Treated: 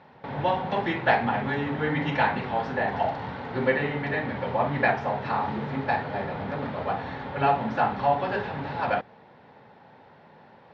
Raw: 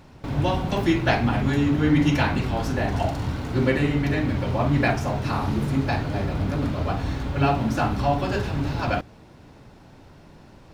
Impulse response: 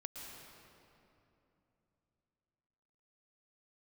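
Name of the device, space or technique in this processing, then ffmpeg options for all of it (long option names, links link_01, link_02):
kitchen radio: -af "highpass=190,equalizer=frequency=310:width_type=q:width=4:gain=-10,equalizer=frequency=490:width_type=q:width=4:gain=5,equalizer=frequency=850:width_type=q:width=4:gain=8,equalizer=frequency=1800:width_type=q:width=4:gain=6,equalizer=frequency=2700:width_type=q:width=4:gain=-3,lowpass=frequency=3700:width=0.5412,lowpass=frequency=3700:width=1.3066,volume=-2.5dB"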